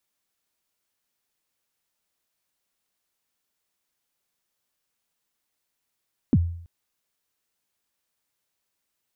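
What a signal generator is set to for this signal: kick drum length 0.33 s, from 310 Hz, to 85 Hz, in 44 ms, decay 0.62 s, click off, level -12 dB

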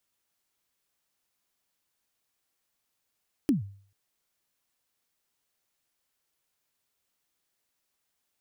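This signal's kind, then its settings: kick drum length 0.44 s, from 320 Hz, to 99 Hz, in 135 ms, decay 0.49 s, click on, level -17 dB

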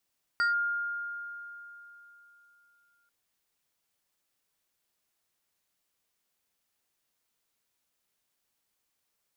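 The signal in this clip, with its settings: FM tone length 2.69 s, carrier 1.41 kHz, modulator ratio 2.32, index 0.5, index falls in 0.14 s linear, decay 3.41 s, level -22.5 dB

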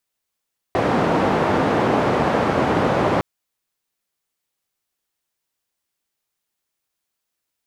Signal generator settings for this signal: noise band 110–760 Hz, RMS -18.5 dBFS 2.46 s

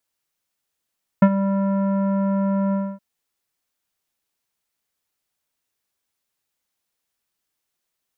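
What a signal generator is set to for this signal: synth note square G3 24 dB/octave, low-pass 1.2 kHz, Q 0.79, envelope 0.5 oct, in 0.14 s, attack 5.7 ms, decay 0.06 s, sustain -12 dB, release 0.26 s, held 1.51 s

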